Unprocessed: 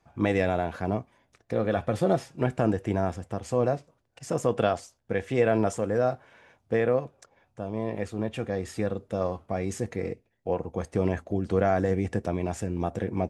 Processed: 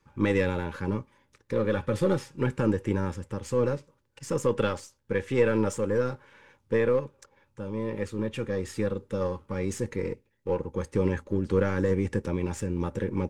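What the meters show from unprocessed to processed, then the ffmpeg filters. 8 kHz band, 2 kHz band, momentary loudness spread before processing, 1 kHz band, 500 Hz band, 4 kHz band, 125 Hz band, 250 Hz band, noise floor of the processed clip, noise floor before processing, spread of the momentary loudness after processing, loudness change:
+0.5 dB, +0.5 dB, 8 LU, -5.5 dB, -0.5 dB, +0.5 dB, 0.0 dB, 0.0 dB, -70 dBFS, -71 dBFS, 8 LU, -0.5 dB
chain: -af "aeval=exprs='if(lt(val(0),0),0.708*val(0),val(0))':c=same,asuperstop=centerf=690:order=12:qfactor=3.3,volume=2dB"

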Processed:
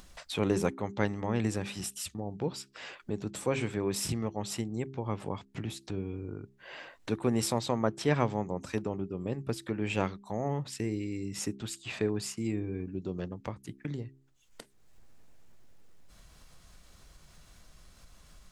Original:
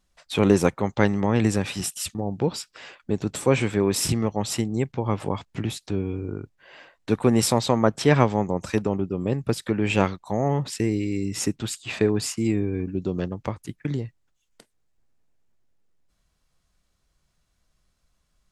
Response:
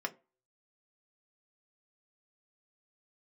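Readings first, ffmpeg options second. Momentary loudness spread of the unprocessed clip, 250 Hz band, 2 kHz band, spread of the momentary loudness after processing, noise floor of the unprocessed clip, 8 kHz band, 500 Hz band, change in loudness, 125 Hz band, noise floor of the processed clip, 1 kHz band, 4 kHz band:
11 LU, -9.5 dB, -8.5 dB, 11 LU, -72 dBFS, -8.5 dB, -9.0 dB, -9.5 dB, -9.5 dB, -61 dBFS, -9.0 dB, -8.5 dB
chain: -af "acompressor=mode=upward:threshold=-25dB:ratio=2.5,bandreject=f=66.77:t=h:w=4,bandreject=f=133.54:t=h:w=4,bandreject=f=200.31:t=h:w=4,bandreject=f=267.08:t=h:w=4,bandreject=f=333.85:t=h:w=4,bandreject=f=400.62:t=h:w=4,volume=-9dB"

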